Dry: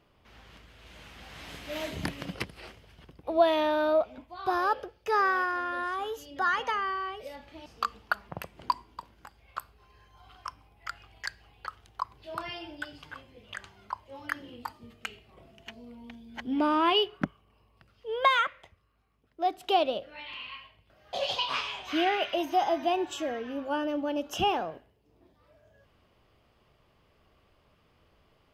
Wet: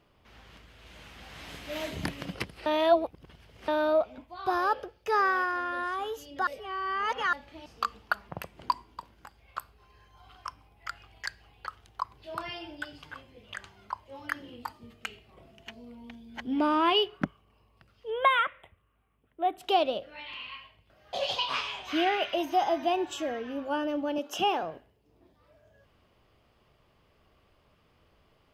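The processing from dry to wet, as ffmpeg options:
-filter_complex "[0:a]asettb=1/sr,asplit=3[a][b][c];[a]atrim=end=18.104[d];[b]atrim=start=18.1:end=19.58,asetpts=PTS-STARTPTS,afade=t=in:d=0.004:c=qsin,afade=t=out:st=1.476:d=0.004:c=qsin,asuperstop=centerf=5400:order=8:qfactor=1.2[e];[c]atrim=start=19.576[f];[d][e]acrossfade=d=0.004:c1=hsin:c2=qsin[g];[g][f]acrossfade=d=0.004:c1=qsin:c2=hsin,asettb=1/sr,asplit=3[h][i][j];[h]atrim=end=24.184[k];[i]atrim=start=24.18:end=24.63,asetpts=PTS-STARTPTS,afade=t=in:d=0.004:c=qsin,afade=t=out:st=0.446:d=0.004:c=qsin,highpass=240[l];[j]atrim=start=24.626[m];[k][l]acrossfade=d=0.004:c1=hsin:c2=qsin[n];[n][m]acrossfade=d=0.004:c1=qsin:c2=hsin,asplit=5[o][p][q][r][s];[o]atrim=end=2.662[t];[p]atrim=start=2.658:end=3.682,asetpts=PTS-STARTPTS,areverse[u];[q]atrim=start=3.678:end=6.472[v];[r]atrim=start=6.468:end=7.332,asetpts=PTS-STARTPTS,areverse[w];[s]atrim=start=7.328[x];[t][u]acrossfade=d=0.004:c1=hsin:c2=hsin[y];[y][v]acrossfade=d=0.004:c1=hsin:c2=hsin[z];[z][w]acrossfade=d=0.004:c1=hsin:c2=hsin[aa];[aa][x]acrossfade=d=0.004:c1=hsin:c2=hsin"

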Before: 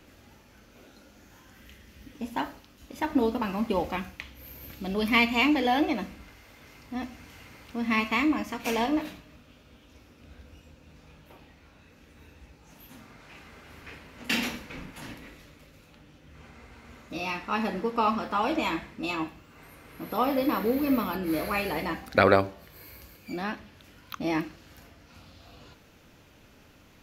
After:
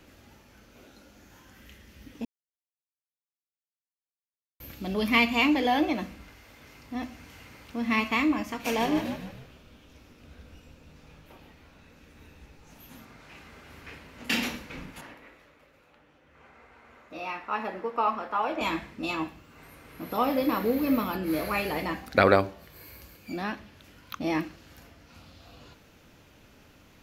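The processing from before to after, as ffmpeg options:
-filter_complex "[0:a]asettb=1/sr,asplit=3[a][b][c];[a]atrim=end=8.644[d];[b]atrim=start=8.64:end=13.05,asetpts=PTS-STARTPTS,afade=t=in:d=0.004:c=qsin,afade=t=out:st=4.406:d=0.004:c=qsin,asplit=6[e][f][g][h][i][j];[f]adelay=149,afreqshift=-59,volume=-8dB[k];[g]adelay=298,afreqshift=-118,volume=-15.1dB[l];[h]adelay=447,afreqshift=-177,volume=-22.3dB[m];[i]adelay=596,afreqshift=-236,volume=-29.4dB[n];[j]adelay=745,afreqshift=-295,volume=-36.5dB[o];[e][k][l][m][n][o]amix=inputs=6:normalize=0,atrim=end_sample=194481[p];[c]atrim=start=13.046[q];[d][p]acrossfade=d=0.004:c1=hsin:c2=qsin[r];[r][q]acrossfade=d=0.004:c1=qsin:c2=hsin,asettb=1/sr,asplit=3[s][t][u];[s]atrim=end=15.014[v];[t]atrim=start=15.01:end=18.61,asetpts=PTS-STARTPTS,afade=t=in:d=0.004:c=qsin,afade=t=out:st=3.596:d=0.004:c=qsin,acrossover=split=390 2400:gain=0.224 1 0.251[w][x][y];[w][x][y]amix=inputs=3:normalize=0[z];[u]atrim=start=18.606[aa];[v][z]acrossfade=d=0.004:c1=hsin:c2=qsin[ab];[ab][aa]acrossfade=d=0.004:c1=qsin:c2=hsin,asplit=3[ac][ad][ae];[ac]atrim=end=2.25,asetpts=PTS-STARTPTS,afade=t=out:st=2.246:d=0.004:c=hsin[af];[ad]atrim=start=2.25:end=4.6,asetpts=PTS-STARTPTS,volume=0[ag];[ae]atrim=start=4.6,asetpts=PTS-STARTPTS,afade=t=in:d=0.004:c=hsin[ah];[af][ag][ah]concat=n=3:v=0:a=1"

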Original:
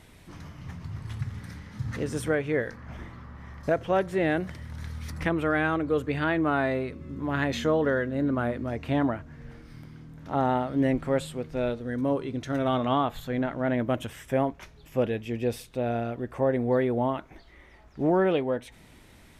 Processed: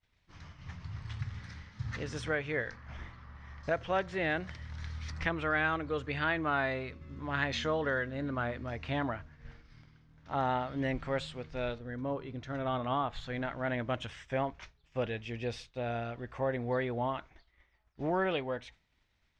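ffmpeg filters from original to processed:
-filter_complex "[0:a]asettb=1/sr,asplit=3[a][b][c];[a]atrim=end=11.784[d];[b]atrim=start=11.78:end=13.13,asetpts=PTS-STARTPTS,afade=t=in:d=0.004:c=qsin,afade=t=out:st=1.346:d=0.004:c=qsin,highshelf=f=2.1k:g=-10.5[e];[c]atrim=start=13.126[f];[d][e]acrossfade=d=0.004:c1=hsin:c2=qsin[g];[g][f]acrossfade=d=0.004:c1=qsin:c2=hsin,lowpass=f=5.9k:w=0.5412,lowpass=f=5.9k:w=1.3066,equalizer=f=290:w=0.46:g=-11,agate=range=-33dB:threshold=-44dB:ratio=3:detection=peak"

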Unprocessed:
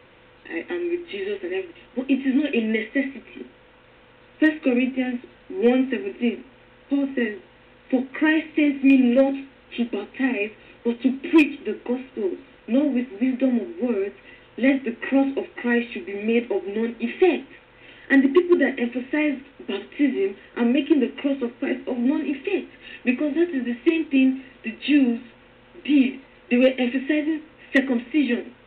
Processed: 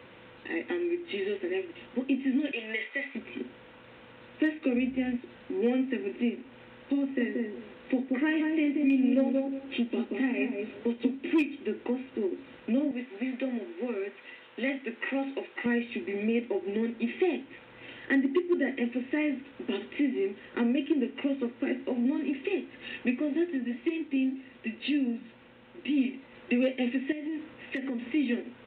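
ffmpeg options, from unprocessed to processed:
-filter_complex "[0:a]asettb=1/sr,asplit=3[a][b][c];[a]atrim=end=2.514[d];[b]atrim=start=2.51:end=3.15,asetpts=PTS-STARTPTS,afade=t=in:d=0.004:c=qsin,afade=t=out:st=0.636:d=0.004:c=qsin,highpass=790[e];[c]atrim=start=3.146[f];[d][e]acrossfade=d=0.004:c1=hsin:c2=qsin[g];[g][f]acrossfade=d=0.004:c1=qsin:c2=hsin,asettb=1/sr,asplit=3[h][i][j];[h]atrim=end=4.754[k];[i]atrim=start=4.75:end=5.16,asetpts=PTS-STARTPTS,afade=t=in:d=0.004:c=qsin,afade=t=out:st=0.406:d=0.004:c=qsin,aeval=exprs='val(0)+0.00794*(sin(2*PI*60*n/s)+sin(2*PI*2*60*n/s)/2+sin(2*PI*3*60*n/s)/3+sin(2*PI*4*60*n/s)/4+sin(2*PI*5*60*n/s)/5)':c=same[l];[j]atrim=start=5.156[m];[k][l]acrossfade=d=0.004:c1=hsin:c2=qsin[n];[n][m]acrossfade=d=0.004:c1=qsin:c2=hsin,asplit=3[o][p][q];[o]afade=t=out:st=7.19:d=0.02[r];[p]asplit=2[s][t];[t]adelay=180,lowpass=f=880:p=1,volume=-3dB,asplit=2[u][v];[v]adelay=180,lowpass=f=880:p=1,volume=0.16,asplit=2[w][x];[x]adelay=180,lowpass=f=880:p=1,volume=0.16[y];[s][u][w][y]amix=inputs=4:normalize=0,afade=t=in:st=7.19:d=0.02,afade=t=out:st=11.15:d=0.02[z];[q]afade=t=in:st=11.15:d=0.02[aa];[r][z][aa]amix=inputs=3:normalize=0,asettb=1/sr,asplit=3[ab][ac][ad];[ab]atrim=end=12.914[ae];[ac]atrim=start=12.91:end=15.66,asetpts=PTS-STARTPTS,afade=t=in:d=0.004:c=qsin,afade=t=out:st=2.746:d=0.004:c=qsin,highpass=f=730:p=1[af];[ad]atrim=start=15.656[ag];[ae][af]acrossfade=d=0.004:c1=hsin:c2=qsin[ah];[ah][ag]acrossfade=d=0.004:c1=qsin:c2=hsin,asplit=3[ai][aj][ak];[ai]afade=t=out:st=23.56:d=0.02[al];[aj]flanger=delay=3.1:depth=5:regen=-80:speed=1.8:shape=sinusoidal,afade=t=in:st=23.56:d=0.02,afade=t=out:st=25.97:d=0.02[am];[ak]afade=t=in:st=25.97:d=0.02[an];[al][am][an]amix=inputs=3:normalize=0,asettb=1/sr,asplit=3[ao][ap][aq];[ao]atrim=end=27.124[ar];[ap]atrim=start=27.12:end=28.03,asetpts=PTS-STARTPTS,afade=t=in:d=0.004:c=qsin,afade=t=out:st=0.906:d=0.004:c=qsin,acompressor=threshold=-29dB:ratio=6:attack=3.2:release=140:knee=1:detection=peak[as];[aq]atrim=start=28.026[at];[ar][as]acrossfade=d=0.004:c1=hsin:c2=qsin[au];[au][at]acrossfade=d=0.004:c1=qsin:c2=hsin,highpass=75,equalizer=f=210:w=1.5:g=3.5,acompressor=threshold=-32dB:ratio=2"

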